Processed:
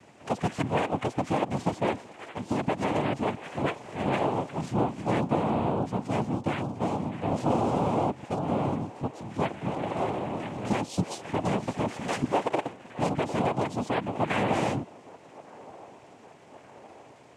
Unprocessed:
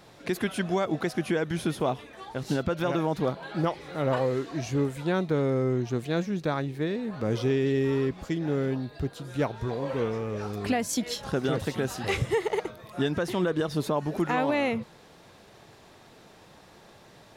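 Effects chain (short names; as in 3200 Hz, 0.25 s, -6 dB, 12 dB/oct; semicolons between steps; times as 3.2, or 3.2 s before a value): high shelf 3200 Hz -11 dB; noise vocoder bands 4; band-limited delay 1.166 s, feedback 64%, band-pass 650 Hz, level -20 dB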